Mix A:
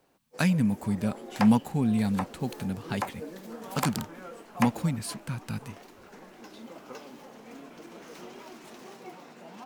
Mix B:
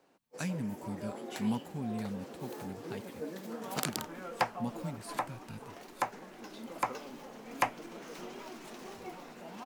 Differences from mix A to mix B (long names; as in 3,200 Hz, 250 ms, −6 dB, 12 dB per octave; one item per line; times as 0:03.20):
speech −12.0 dB
second sound: entry +3.00 s